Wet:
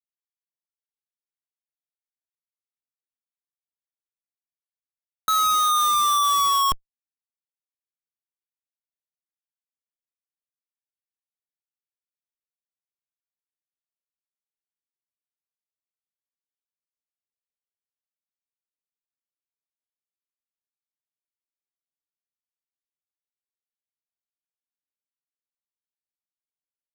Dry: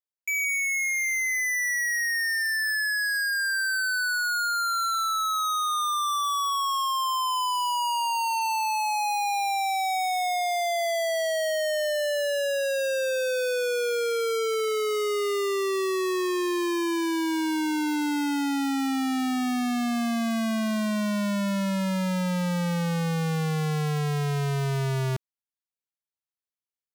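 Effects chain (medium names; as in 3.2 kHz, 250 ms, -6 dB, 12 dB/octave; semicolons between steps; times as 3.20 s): 5.28–6.72 s: RIAA curve recording; Schmitt trigger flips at -25 dBFS; trim +6.5 dB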